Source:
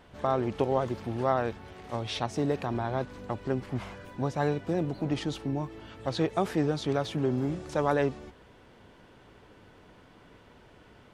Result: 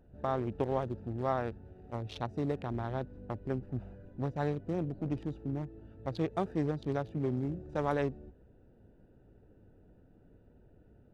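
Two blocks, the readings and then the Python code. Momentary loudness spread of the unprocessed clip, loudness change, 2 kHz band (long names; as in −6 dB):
9 LU, −5.0 dB, −7.5 dB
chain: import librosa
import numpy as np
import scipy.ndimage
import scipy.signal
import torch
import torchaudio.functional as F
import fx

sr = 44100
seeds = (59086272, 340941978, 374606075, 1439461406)

y = fx.wiener(x, sr, points=41)
y = fx.low_shelf(y, sr, hz=77.0, db=8.0)
y = y * 10.0 ** (-5.0 / 20.0)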